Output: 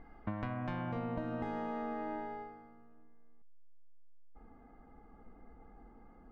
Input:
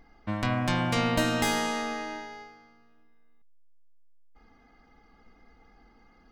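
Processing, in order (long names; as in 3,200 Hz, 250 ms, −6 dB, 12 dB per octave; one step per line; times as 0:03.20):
low-pass filter 1,700 Hz 12 dB per octave, from 0:00.92 1,000 Hz
downward compressor 12 to 1, threshold −37 dBFS, peak gain reduction 16 dB
level +2.5 dB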